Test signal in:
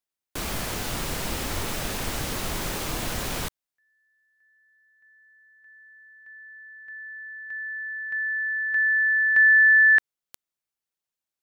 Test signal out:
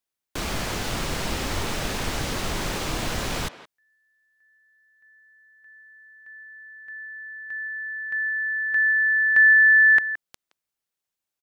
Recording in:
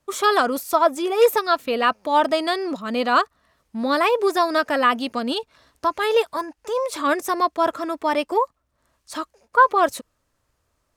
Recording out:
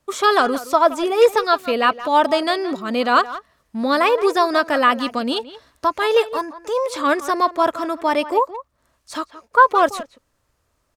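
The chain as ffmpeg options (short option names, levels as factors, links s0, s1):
-filter_complex "[0:a]asplit=2[s0][s1];[s1]adelay=170,highpass=300,lowpass=3400,asoftclip=type=hard:threshold=0.251,volume=0.2[s2];[s0][s2]amix=inputs=2:normalize=0,acrossover=split=7900[s3][s4];[s4]acompressor=threshold=0.00562:ratio=4:attack=1:release=60[s5];[s3][s5]amix=inputs=2:normalize=0,volume=1.33"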